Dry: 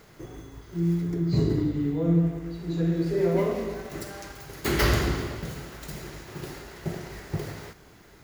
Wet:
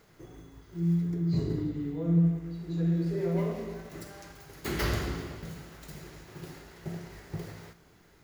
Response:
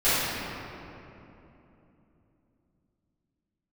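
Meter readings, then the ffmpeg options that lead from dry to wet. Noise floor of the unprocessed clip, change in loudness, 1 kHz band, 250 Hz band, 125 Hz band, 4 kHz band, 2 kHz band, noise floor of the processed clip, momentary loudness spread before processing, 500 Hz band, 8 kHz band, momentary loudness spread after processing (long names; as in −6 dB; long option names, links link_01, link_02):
−53 dBFS, −4.0 dB, −7.5 dB, −3.5 dB, −2.5 dB, −7.5 dB, −7.5 dB, −59 dBFS, 17 LU, −7.5 dB, −7.5 dB, 18 LU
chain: -filter_complex "[0:a]asplit=2[link_01][link_02];[link_02]equalizer=frequency=170:width_type=o:width=0.45:gain=14.5[link_03];[1:a]atrim=start_sample=2205,atrim=end_sample=3969[link_04];[link_03][link_04]afir=irnorm=-1:irlink=0,volume=-27.5dB[link_05];[link_01][link_05]amix=inputs=2:normalize=0,volume=-8dB"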